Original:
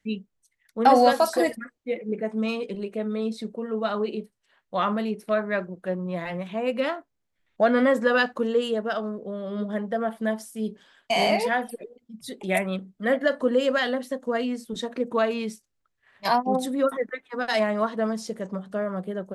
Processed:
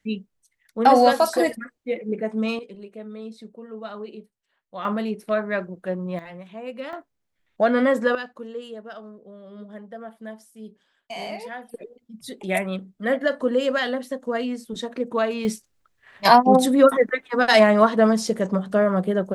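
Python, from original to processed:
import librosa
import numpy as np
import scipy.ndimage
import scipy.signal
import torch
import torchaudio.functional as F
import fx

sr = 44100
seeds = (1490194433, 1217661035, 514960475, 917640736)

y = fx.gain(x, sr, db=fx.steps((0.0, 2.0), (2.59, -8.5), (4.85, 1.0), (6.19, -8.0), (6.93, 1.0), (8.15, -11.0), (11.74, 0.5), (15.45, 9.0)))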